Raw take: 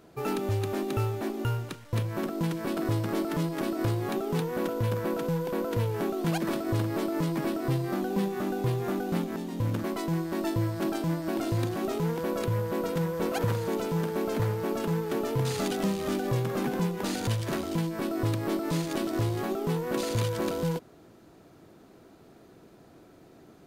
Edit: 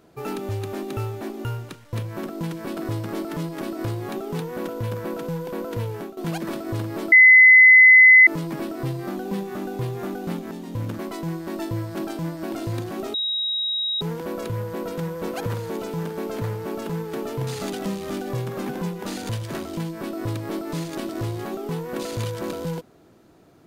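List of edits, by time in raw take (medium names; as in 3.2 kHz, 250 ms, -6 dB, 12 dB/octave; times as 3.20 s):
5.92–6.17 s: fade out, to -15 dB
7.12 s: add tone 2.03 kHz -7 dBFS 1.15 s
11.99 s: add tone 3.81 kHz -22 dBFS 0.87 s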